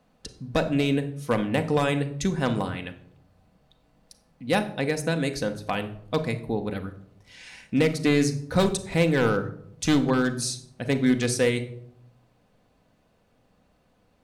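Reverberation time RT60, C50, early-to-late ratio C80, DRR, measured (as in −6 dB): 0.70 s, 12.5 dB, 16.5 dB, 6.0 dB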